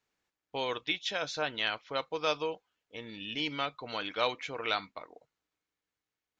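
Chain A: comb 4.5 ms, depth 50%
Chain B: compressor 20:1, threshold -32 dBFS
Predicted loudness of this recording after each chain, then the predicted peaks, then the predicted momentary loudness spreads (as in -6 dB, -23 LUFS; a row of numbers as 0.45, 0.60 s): -33.0, -38.5 LUFS; -14.0, -20.5 dBFS; 13, 10 LU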